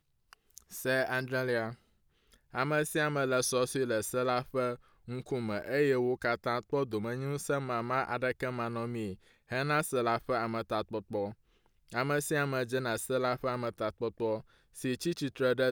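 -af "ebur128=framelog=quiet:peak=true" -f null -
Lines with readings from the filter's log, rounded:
Integrated loudness:
  I:         -32.8 LUFS
  Threshold: -43.1 LUFS
Loudness range:
  LRA:         2.1 LU
  Threshold: -53.0 LUFS
  LRA low:   -34.1 LUFS
  LRA high:  -32.0 LUFS
True peak:
  Peak:      -15.7 dBFS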